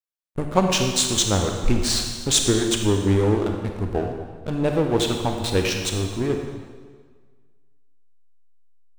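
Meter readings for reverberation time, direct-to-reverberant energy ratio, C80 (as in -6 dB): 1.6 s, 3.0 dB, 5.5 dB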